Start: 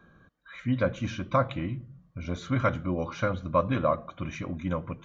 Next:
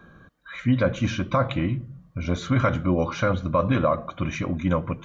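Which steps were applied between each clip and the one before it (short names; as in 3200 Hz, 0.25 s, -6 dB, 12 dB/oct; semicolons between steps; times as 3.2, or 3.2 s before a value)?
limiter -18.5 dBFS, peak gain reduction 7.5 dB; gain +7.5 dB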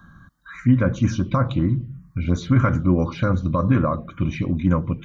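bell 650 Hz -10 dB 1.1 oct; envelope phaser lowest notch 400 Hz, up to 4400 Hz, full sweep at -19 dBFS; dynamic EQ 3000 Hz, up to -7 dB, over -50 dBFS, Q 0.96; gain +6 dB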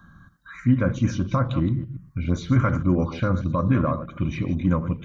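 reverse delay 0.123 s, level -12 dB; gain -2.5 dB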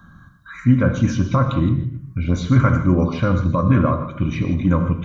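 non-linear reverb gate 0.18 s flat, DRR 7 dB; gain +4 dB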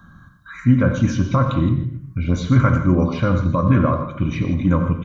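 speakerphone echo 90 ms, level -13 dB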